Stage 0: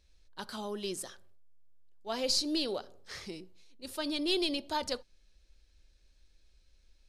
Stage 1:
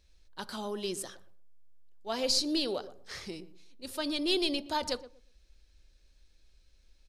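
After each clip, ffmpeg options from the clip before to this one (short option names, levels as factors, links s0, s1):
-filter_complex "[0:a]asplit=2[s0][s1];[s1]adelay=119,lowpass=f=860:p=1,volume=0.211,asplit=2[s2][s3];[s3]adelay=119,lowpass=f=860:p=1,volume=0.23,asplit=2[s4][s5];[s5]adelay=119,lowpass=f=860:p=1,volume=0.23[s6];[s0][s2][s4][s6]amix=inputs=4:normalize=0,volume=1.19"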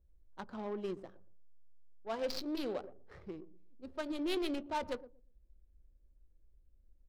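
-af "asoftclip=type=tanh:threshold=0.0794,flanger=delay=1.9:depth=6.4:regen=-70:speed=0.31:shape=triangular,adynamicsmooth=sensitivity=6.5:basefreq=520,volume=1.19"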